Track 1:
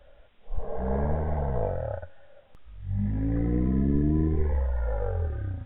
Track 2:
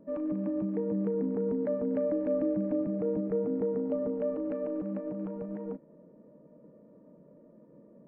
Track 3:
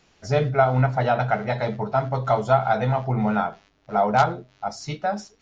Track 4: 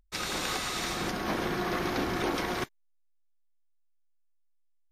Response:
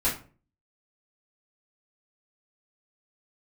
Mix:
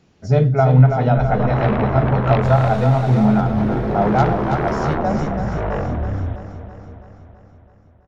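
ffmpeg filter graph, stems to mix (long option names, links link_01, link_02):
-filter_complex "[0:a]aeval=exprs='0.251*sin(PI/2*7.08*val(0)/0.251)':channel_layout=same,adelay=700,volume=-7.5dB,asplit=2[link_01][link_02];[link_02]volume=-12.5dB[link_03];[1:a]adelay=1200,volume=-9dB[link_04];[2:a]equalizer=frequency=150:width=0.3:gain=14,volume=-4.5dB,asplit=2[link_05][link_06];[link_06]volume=-6.5dB[link_07];[3:a]lowpass=frequency=1200:poles=1,adelay=2300,volume=1dB,asplit=2[link_08][link_09];[link_09]volume=-16.5dB[link_10];[link_03][link_07][link_10]amix=inputs=3:normalize=0,aecho=0:1:329|658|987|1316|1645|1974|2303|2632|2961|3290:1|0.6|0.36|0.216|0.13|0.0778|0.0467|0.028|0.0168|0.0101[link_11];[link_01][link_04][link_05][link_08][link_11]amix=inputs=5:normalize=0"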